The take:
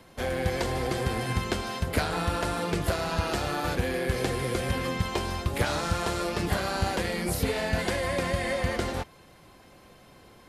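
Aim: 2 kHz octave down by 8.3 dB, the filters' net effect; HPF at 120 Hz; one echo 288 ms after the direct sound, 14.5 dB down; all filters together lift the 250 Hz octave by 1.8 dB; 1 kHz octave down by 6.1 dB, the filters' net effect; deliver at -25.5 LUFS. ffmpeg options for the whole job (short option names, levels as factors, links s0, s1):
-af "highpass=120,equalizer=f=250:t=o:g=3.5,equalizer=f=1000:t=o:g=-6.5,equalizer=f=2000:t=o:g=-8.5,aecho=1:1:288:0.188,volume=1.88"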